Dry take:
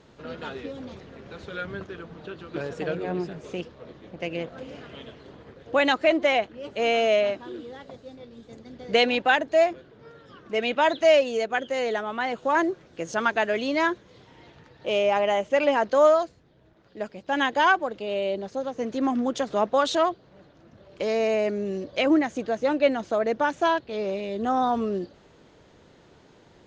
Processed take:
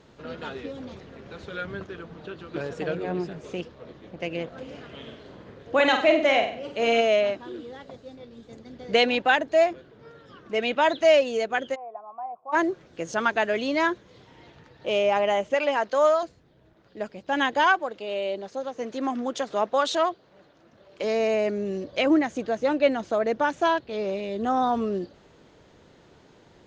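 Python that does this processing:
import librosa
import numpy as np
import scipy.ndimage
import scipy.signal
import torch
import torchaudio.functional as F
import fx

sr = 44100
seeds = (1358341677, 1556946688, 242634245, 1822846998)

y = fx.room_flutter(x, sr, wall_m=8.2, rt60_s=0.49, at=(5.01, 7.0), fade=0.02)
y = fx.formant_cascade(y, sr, vowel='a', at=(11.74, 12.52), fade=0.02)
y = fx.low_shelf(y, sr, hz=350.0, db=-10.5, at=(15.54, 16.23))
y = fx.low_shelf(y, sr, hz=220.0, db=-11.5, at=(17.64, 21.04))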